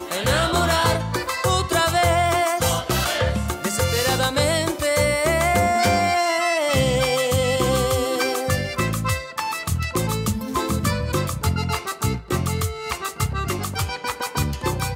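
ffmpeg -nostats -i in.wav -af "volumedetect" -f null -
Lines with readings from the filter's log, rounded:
mean_volume: -21.5 dB
max_volume: -6.5 dB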